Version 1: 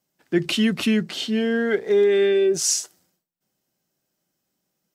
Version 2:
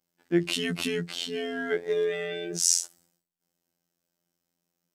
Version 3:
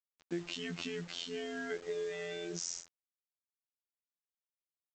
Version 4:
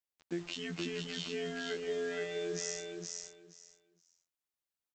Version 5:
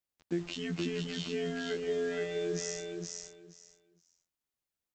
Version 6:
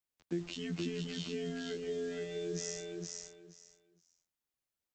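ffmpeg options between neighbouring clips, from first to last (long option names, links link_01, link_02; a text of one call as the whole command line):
ffmpeg -i in.wav -af "afftfilt=real='hypot(re,im)*cos(PI*b)':imag='0':win_size=2048:overlap=0.75,adynamicequalizer=threshold=0.00794:dfrequency=9400:dqfactor=0.76:tfrequency=9400:tqfactor=0.76:attack=5:release=100:ratio=0.375:range=3:mode=boostabove:tftype=bell,volume=-2dB" out.wav
ffmpeg -i in.wav -af "acompressor=threshold=-31dB:ratio=4,aresample=16000,acrusher=bits=7:mix=0:aa=0.000001,aresample=44100,volume=-5dB" out.wav
ffmpeg -i in.wav -af "aecho=1:1:471|942|1413:0.668|0.127|0.0241" out.wav
ffmpeg -i in.wav -af "lowshelf=frequency=390:gain=7.5" out.wav
ffmpeg -i in.wav -filter_complex "[0:a]acrossover=split=430|3000[link_01][link_02][link_03];[link_02]acompressor=threshold=-45dB:ratio=6[link_04];[link_01][link_04][link_03]amix=inputs=3:normalize=0,volume=-2dB" out.wav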